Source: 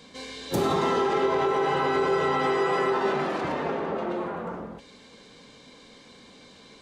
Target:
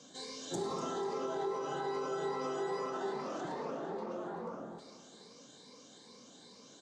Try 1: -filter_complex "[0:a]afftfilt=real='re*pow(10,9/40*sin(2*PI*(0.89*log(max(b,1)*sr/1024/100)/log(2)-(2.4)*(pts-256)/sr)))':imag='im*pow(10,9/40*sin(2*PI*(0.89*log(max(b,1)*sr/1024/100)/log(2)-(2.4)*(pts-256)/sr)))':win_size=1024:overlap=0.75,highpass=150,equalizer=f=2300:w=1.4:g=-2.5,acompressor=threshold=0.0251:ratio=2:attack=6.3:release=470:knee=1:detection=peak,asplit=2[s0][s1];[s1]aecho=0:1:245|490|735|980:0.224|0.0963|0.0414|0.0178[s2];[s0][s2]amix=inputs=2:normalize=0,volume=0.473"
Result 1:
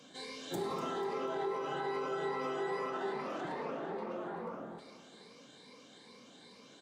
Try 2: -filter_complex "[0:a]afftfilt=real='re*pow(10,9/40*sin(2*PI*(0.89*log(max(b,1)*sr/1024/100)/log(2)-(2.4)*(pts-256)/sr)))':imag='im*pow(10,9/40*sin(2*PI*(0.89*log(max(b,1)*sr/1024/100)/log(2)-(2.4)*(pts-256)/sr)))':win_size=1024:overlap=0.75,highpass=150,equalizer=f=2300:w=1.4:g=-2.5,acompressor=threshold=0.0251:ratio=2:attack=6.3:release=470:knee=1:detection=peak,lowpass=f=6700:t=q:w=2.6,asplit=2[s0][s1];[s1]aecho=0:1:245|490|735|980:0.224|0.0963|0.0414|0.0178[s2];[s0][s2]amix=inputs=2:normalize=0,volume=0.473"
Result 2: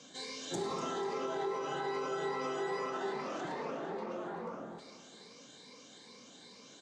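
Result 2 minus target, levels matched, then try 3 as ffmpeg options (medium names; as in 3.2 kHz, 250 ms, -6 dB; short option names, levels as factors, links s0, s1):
2 kHz band +4.0 dB
-filter_complex "[0:a]afftfilt=real='re*pow(10,9/40*sin(2*PI*(0.89*log(max(b,1)*sr/1024/100)/log(2)-(2.4)*(pts-256)/sr)))':imag='im*pow(10,9/40*sin(2*PI*(0.89*log(max(b,1)*sr/1024/100)/log(2)-(2.4)*(pts-256)/sr)))':win_size=1024:overlap=0.75,highpass=150,equalizer=f=2300:w=1.4:g=-10.5,acompressor=threshold=0.0251:ratio=2:attack=6.3:release=470:knee=1:detection=peak,lowpass=f=6700:t=q:w=2.6,asplit=2[s0][s1];[s1]aecho=0:1:245|490|735|980:0.224|0.0963|0.0414|0.0178[s2];[s0][s2]amix=inputs=2:normalize=0,volume=0.473"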